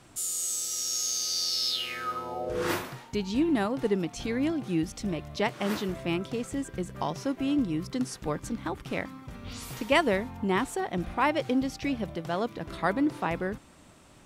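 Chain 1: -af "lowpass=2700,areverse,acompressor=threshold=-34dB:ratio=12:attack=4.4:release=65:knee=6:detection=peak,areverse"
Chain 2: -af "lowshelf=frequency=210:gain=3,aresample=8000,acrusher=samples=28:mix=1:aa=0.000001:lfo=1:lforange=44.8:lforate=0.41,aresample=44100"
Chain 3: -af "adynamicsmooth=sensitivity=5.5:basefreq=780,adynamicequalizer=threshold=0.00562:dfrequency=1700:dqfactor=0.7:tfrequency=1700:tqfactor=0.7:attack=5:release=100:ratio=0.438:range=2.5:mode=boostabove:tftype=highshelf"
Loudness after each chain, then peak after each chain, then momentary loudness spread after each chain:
−39.0, −31.5, −29.5 LKFS; −24.5, −9.5, −8.5 dBFS; 6, 12, 11 LU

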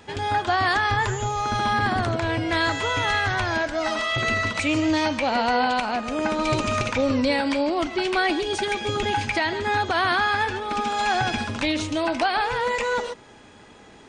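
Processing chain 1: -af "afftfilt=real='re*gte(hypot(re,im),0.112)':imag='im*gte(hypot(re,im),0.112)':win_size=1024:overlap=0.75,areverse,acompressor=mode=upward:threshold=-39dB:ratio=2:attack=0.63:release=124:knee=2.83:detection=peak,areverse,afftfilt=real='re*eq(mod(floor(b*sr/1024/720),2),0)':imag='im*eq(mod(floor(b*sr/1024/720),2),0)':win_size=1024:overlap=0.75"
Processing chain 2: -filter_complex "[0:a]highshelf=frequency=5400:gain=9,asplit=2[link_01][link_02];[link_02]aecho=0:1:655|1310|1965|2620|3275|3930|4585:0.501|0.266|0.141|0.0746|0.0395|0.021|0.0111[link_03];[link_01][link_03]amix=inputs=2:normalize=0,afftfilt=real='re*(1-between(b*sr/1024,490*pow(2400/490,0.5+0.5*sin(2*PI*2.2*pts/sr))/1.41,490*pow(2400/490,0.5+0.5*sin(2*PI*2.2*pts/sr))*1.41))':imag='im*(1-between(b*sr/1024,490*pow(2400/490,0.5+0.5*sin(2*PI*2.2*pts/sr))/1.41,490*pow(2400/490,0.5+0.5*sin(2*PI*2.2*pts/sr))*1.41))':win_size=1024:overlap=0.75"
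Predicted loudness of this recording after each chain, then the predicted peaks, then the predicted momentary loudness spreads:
−26.0, −22.5 LKFS; −13.5, −9.0 dBFS; 6, 3 LU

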